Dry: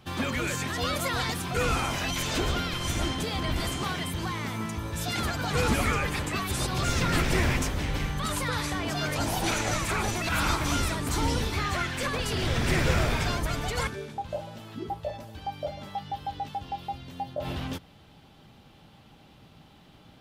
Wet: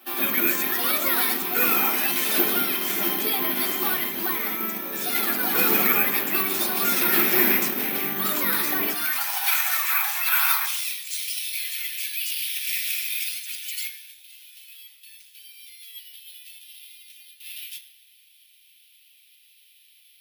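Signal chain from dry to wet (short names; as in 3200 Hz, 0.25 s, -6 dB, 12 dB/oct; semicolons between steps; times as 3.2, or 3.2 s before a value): octaver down 1 oct, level +3 dB; steep high-pass 220 Hz 36 dB/oct, from 8.9 s 850 Hz, from 10.65 s 2400 Hz; reverb RT60 0.65 s, pre-delay 3 ms, DRR 1 dB; careless resampling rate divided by 3×, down filtered, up zero stuff; gain -1 dB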